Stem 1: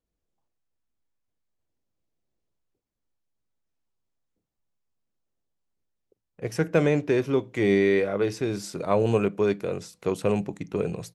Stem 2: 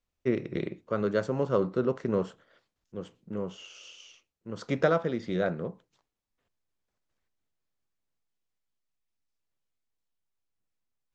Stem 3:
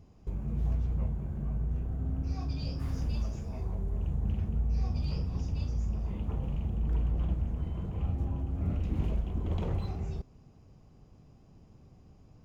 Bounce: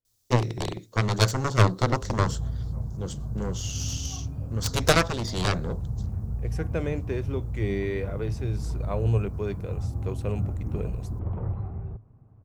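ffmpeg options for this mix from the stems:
-filter_complex "[0:a]volume=-9dB[a];[1:a]aexciter=amount=7:drive=5.6:freq=3.7k,aeval=exprs='0.335*(cos(1*acos(clip(val(0)/0.335,-1,1)))-cos(1*PI/2))+0.0841*(cos(5*acos(clip(val(0)/0.335,-1,1)))-cos(5*PI/2))+0.168*(cos(7*acos(clip(val(0)/0.335,-1,1)))-cos(7*PI/2))+0.0299*(cos(8*acos(clip(val(0)/0.335,-1,1)))-cos(8*PI/2))':c=same,adelay=50,volume=1dB[b];[2:a]lowpass=f=1.4k:w=0.5412,lowpass=f=1.4k:w=1.3066,crystalizer=i=6.5:c=0,adelay=1750,volume=-3dB[c];[a][b][c]amix=inputs=3:normalize=0,equalizer=f=110:w=3.7:g=14.5"

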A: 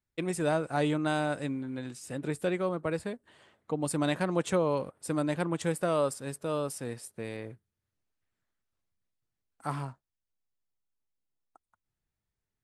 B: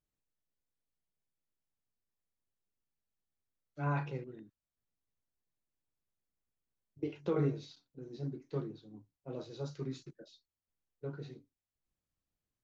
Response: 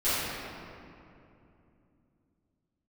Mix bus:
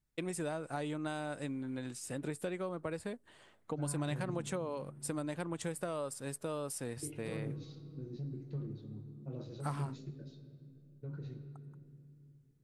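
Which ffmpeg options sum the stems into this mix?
-filter_complex "[0:a]equalizer=f=9.3k:w=0.84:g=3.5,acompressor=threshold=-33dB:ratio=6,volume=-2dB[a];[1:a]bass=f=250:g=14,treble=f=4k:g=-1,alimiter=level_in=6dB:limit=-24dB:level=0:latency=1,volume=-6dB,volume=-6dB,asplit=2[b][c];[c]volume=-19.5dB[d];[2:a]atrim=start_sample=2205[e];[d][e]afir=irnorm=-1:irlink=0[f];[a][b][f]amix=inputs=3:normalize=0"

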